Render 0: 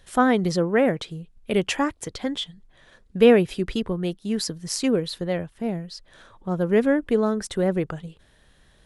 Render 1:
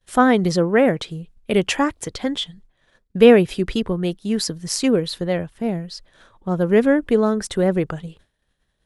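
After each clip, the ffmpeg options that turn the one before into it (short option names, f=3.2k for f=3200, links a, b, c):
-af "agate=range=-33dB:threshold=-44dB:ratio=3:detection=peak,volume=4dB"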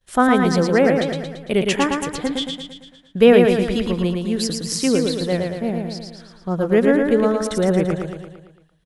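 -af "aecho=1:1:113|226|339|452|565|678|791:0.631|0.347|0.191|0.105|0.0577|0.0318|0.0175,volume=-1dB"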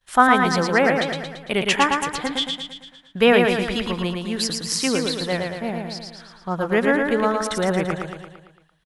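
-af "firequalizer=gain_entry='entry(480,0);entry(860,10);entry(6900,5)':delay=0.05:min_phase=1,volume=-5dB"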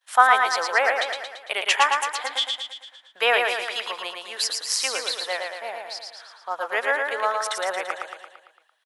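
-af "highpass=f=610:w=0.5412,highpass=f=610:w=1.3066"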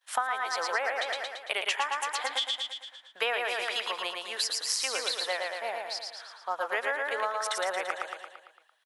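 -af "acompressor=threshold=-25dB:ratio=8,volume=-1dB"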